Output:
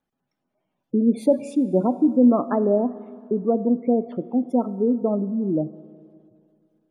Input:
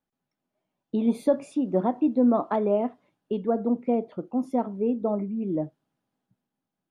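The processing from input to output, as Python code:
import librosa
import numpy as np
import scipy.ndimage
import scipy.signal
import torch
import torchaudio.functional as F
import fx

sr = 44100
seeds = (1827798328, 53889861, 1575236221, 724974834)

y = fx.spec_gate(x, sr, threshold_db=-25, keep='strong')
y = fx.dynamic_eq(y, sr, hz=850.0, q=2.1, threshold_db=-41.0, ratio=4.0, max_db=-6)
y = fx.rev_schroeder(y, sr, rt60_s=2.3, comb_ms=25, drr_db=15.5)
y = y * 10.0 ** (5.0 / 20.0)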